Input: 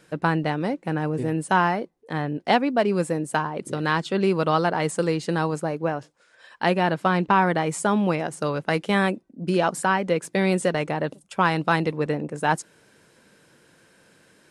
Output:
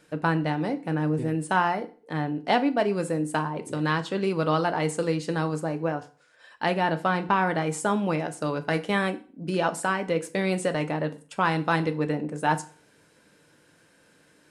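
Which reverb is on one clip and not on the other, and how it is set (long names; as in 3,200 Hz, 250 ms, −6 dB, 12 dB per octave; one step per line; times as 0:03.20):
feedback delay network reverb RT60 0.4 s, low-frequency decay 1.05×, high-frequency decay 0.9×, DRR 8 dB
level −3.5 dB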